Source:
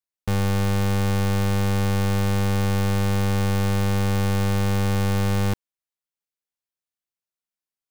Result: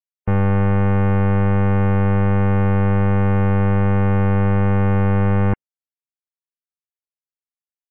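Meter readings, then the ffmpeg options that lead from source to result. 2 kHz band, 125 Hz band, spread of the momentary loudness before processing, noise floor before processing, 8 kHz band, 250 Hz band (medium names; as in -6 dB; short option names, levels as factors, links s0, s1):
+3.0 dB, +5.5 dB, 1 LU, under -85 dBFS, under -30 dB, +5.5 dB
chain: -filter_complex "[0:a]acrossover=split=2600[s0][s1];[s1]acompressor=threshold=0.00562:ratio=4:attack=1:release=60[s2];[s0][s2]amix=inputs=2:normalize=0,afftdn=nr=25:nf=-39,volume=1.88"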